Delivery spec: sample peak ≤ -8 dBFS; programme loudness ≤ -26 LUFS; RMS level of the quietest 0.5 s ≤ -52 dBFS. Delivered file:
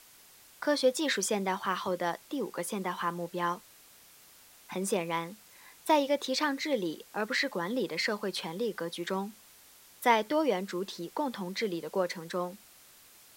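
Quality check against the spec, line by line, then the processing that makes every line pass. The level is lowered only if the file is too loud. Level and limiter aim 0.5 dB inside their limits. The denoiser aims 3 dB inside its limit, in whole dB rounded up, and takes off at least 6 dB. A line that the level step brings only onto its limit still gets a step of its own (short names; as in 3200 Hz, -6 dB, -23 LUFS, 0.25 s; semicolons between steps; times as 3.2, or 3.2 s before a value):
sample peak -10.0 dBFS: OK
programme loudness -32.0 LUFS: OK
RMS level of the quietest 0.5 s -57 dBFS: OK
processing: none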